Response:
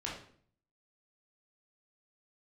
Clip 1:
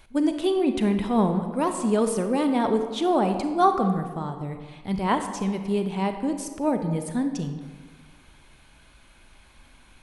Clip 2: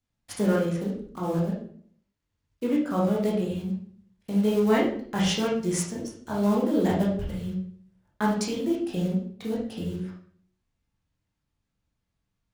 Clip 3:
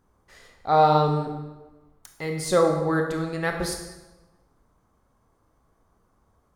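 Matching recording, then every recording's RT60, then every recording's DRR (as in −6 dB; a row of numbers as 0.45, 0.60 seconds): 2; 1.6, 0.55, 1.1 seconds; 6.5, −4.5, 3.0 decibels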